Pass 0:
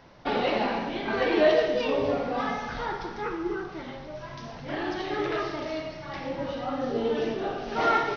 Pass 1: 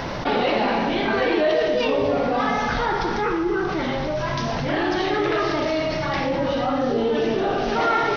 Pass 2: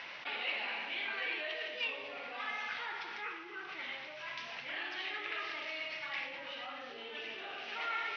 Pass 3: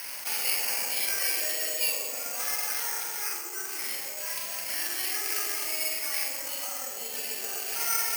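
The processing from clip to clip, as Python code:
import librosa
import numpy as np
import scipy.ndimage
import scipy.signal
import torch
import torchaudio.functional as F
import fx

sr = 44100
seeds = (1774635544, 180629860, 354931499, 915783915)

y1 = fx.env_flatten(x, sr, amount_pct=70)
y1 = y1 * 10.0 ** (-1.0 / 20.0)
y2 = fx.bandpass_q(y1, sr, hz=2500.0, q=2.8)
y2 = y2 * 10.0 ** (-5.0 / 20.0)
y3 = fx.doubler(y2, sr, ms=44.0, db=-3.5)
y3 = fx.echo_banded(y3, sr, ms=128, feedback_pct=80, hz=500.0, wet_db=-3.5)
y3 = (np.kron(scipy.signal.resample_poly(y3, 1, 6), np.eye(6)[0]) * 6)[:len(y3)]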